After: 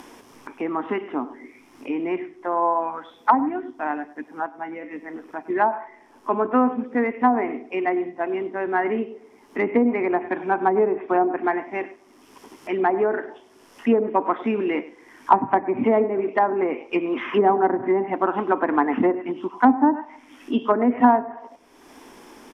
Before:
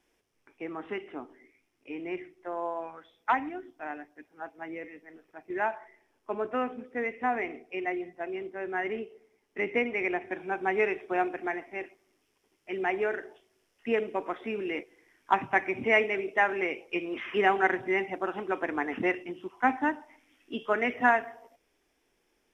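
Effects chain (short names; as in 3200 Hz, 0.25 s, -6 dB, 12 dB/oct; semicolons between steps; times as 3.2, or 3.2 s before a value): low shelf 82 Hz -8.5 dB; echo 0.1 s -18.5 dB; in parallel at +1.5 dB: upward compressor, threshold -32 dBFS; on the sum: treble ducked by the level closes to 670 Hz, closed at -16.5 dBFS; 4.46–4.91 resonator 74 Hz, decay 0.16 s, harmonics all, mix 80%; soft clip -7.5 dBFS, distortion -28 dB; fifteen-band EQ 250 Hz +10 dB, 1000 Hz +10 dB, 2500 Hz -3 dB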